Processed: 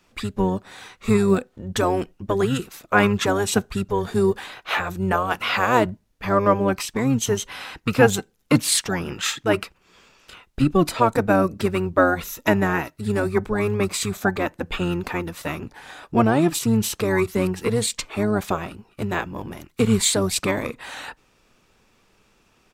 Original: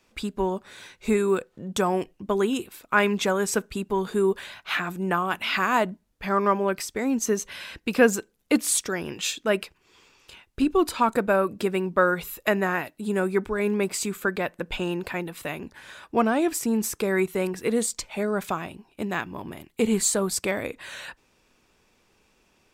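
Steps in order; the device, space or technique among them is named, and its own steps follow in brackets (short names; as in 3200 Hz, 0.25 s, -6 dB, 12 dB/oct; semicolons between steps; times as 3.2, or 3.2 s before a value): octave pedal (harmoniser -12 st -3 dB); gain +2 dB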